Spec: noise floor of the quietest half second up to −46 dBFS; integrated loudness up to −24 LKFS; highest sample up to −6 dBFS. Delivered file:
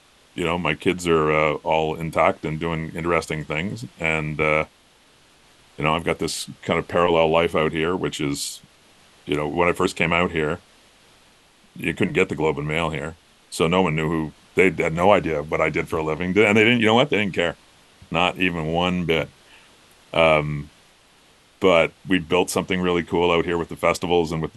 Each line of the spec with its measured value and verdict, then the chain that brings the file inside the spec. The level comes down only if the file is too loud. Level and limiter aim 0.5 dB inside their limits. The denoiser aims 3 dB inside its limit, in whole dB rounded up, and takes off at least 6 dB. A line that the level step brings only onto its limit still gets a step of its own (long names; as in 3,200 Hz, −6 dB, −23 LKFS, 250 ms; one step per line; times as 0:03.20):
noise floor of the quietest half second −55 dBFS: in spec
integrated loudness −21.5 LKFS: out of spec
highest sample −2.5 dBFS: out of spec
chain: level −3 dB
brickwall limiter −6.5 dBFS